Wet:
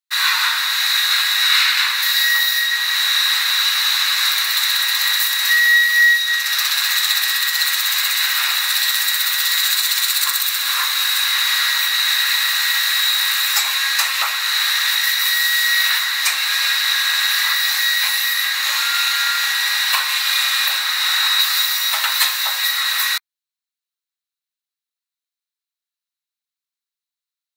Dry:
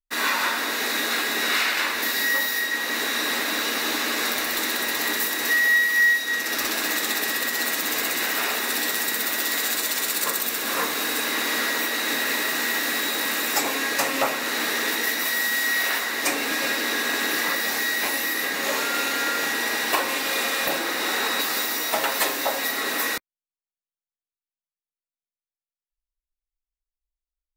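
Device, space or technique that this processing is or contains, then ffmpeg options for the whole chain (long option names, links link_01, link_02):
headphones lying on a table: -af "highpass=frequency=1100:width=0.5412,highpass=frequency=1100:width=1.3066,equalizer=frequency=4000:width_type=o:width=0.24:gain=10.5,volume=5.5dB"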